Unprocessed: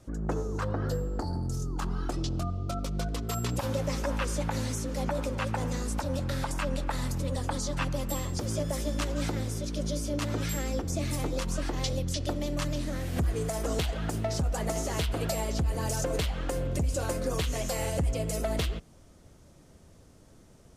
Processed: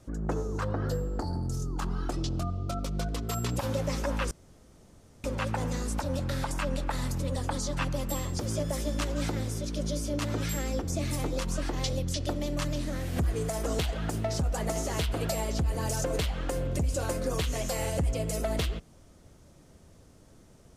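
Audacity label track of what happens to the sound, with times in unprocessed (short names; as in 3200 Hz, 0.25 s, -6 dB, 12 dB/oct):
4.310000	5.240000	room tone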